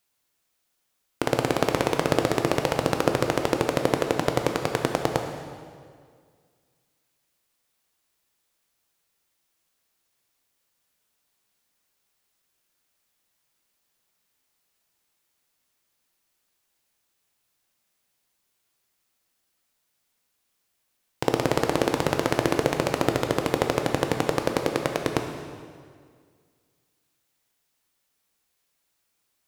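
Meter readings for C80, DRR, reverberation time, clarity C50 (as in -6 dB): 6.5 dB, 4.0 dB, 2.0 s, 5.5 dB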